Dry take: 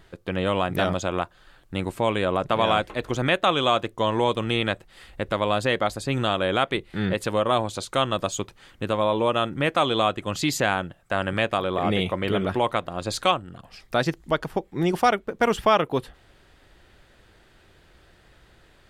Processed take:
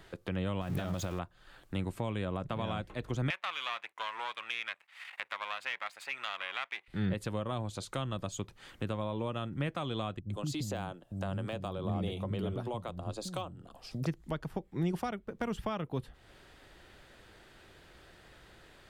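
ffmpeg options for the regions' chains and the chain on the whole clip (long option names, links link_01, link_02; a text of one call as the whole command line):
ffmpeg -i in.wav -filter_complex "[0:a]asettb=1/sr,asplit=3[link_01][link_02][link_03];[link_01]atrim=end=0.614[link_04];[link_02]atrim=start=0.61:end=1.19,asetpts=PTS-STARTPTS,afade=type=in:duration=0.004:curve=qsin,afade=type=out:start_time=0.576:duration=0.004:curve=qsin,aeval=exprs='val(0)+0.5*0.0335*sgn(val(0))':channel_layout=same,acompressor=threshold=-23dB:ratio=4:attack=3.2:release=140:knee=1:detection=peak[link_05];[link_03]atrim=start=1.186[link_06];[link_04][link_05]acrossfade=duration=0.004:curve1=hsin:curve2=qsin[link_07];[link_07][link_06]acrossfade=duration=0.004:curve1=qsin:curve2=hsin,asettb=1/sr,asplit=3[link_08][link_09][link_10];[link_08]atrim=end=3.304[link_11];[link_09]atrim=start=3.3:end=6.88,asetpts=PTS-STARTPTS,afade=type=in:duration=0.004:curve=qsin,afade=type=out:start_time=3.576:duration=0.004:curve=qsin,aeval=exprs='if(lt(val(0),0),0.251*val(0),val(0))':channel_layout=same,highpass=frequency=980:width_type=q:width=1.8,equalizer=frequency=2300:width_type=o:width=0.97:gain=14[link_12];[link_10]atrim=start=6.876[link_13];[link_11][link_12]acrossfade=duration=0.004:curve1=hsin:curve2=qsin[link_14];[link_14][link_13]acrossfade=duration=0.004:curve1=qsin:curve2=hsin,asettb=1/sr,asplit=3[link_15][link_16][link_17];[link_15]atrim=end=10.194[link_18];[link_16]atrim=start=10.19:end=14.06,asetpts=PTS-STARTPTS,afade=type=in:duration=0.004:curve=qsin,afade=type=out:start_time=3.866:duration=0.004:curve=qsin,deesser=0.6,equalizer=frequency=1900:width_type=o:width=1.2:gain=-11,acrossover=split=250[link_19][link_20];[link_20]adelay=110[link_21];[link_19][link_21]amix=inputs=2:normalize=0,atrim=end_sample=170667[link_22];[link_17]atrim=start=14.056[link_23];[link_18][link_22]acrossfade=duration=0.004:curve1=hsin:curve2=qsin[link_24];[link_24][link_23]acrossfade=duration=0.004:curve1=qsin:curve2=hsin,acrossover=split=190[link_25][link_26];[link_26]acompressor=threshold=-41dB:ratio=3[link_27];[link_25][link_27]amix=inputs=2:normalize=0,lowshelf=frequency=130:gain=-5.5" out.wav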